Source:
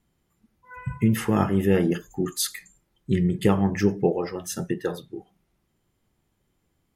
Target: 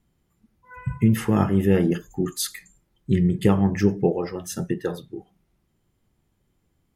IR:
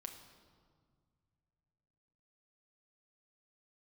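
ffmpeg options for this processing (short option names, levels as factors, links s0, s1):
-af "lowshelf=f=280:g=5,volume=0.891"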